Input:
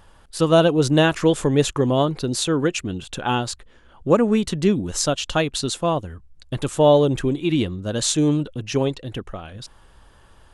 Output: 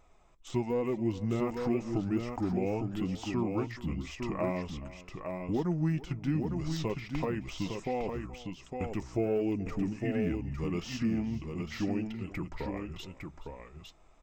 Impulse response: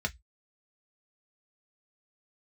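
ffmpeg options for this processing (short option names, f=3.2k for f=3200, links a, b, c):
-filter_complex "[0:a]agate=range=-8dB:threshold=-37dB:ratio=16:detection=peak,deesser=0.9,bandreject=f=5.9k:w=15,acompressor=threshold=-31dB:ratio=2,flanger=delay=2.9:depth=1.8:regen=-53:speed=1.7:shape=sinusoidal,asetrate=32667,aresample=44100,aecho=1:1:425|857:0.126|0.531,asplit=2[a][b];[1:a]atrim=start_sample=2205[c];[b][c]afir=irnorm=-1:irlink=0,volume=-22.5dB[d];[a][d]amix=inputs=2:normalize=0"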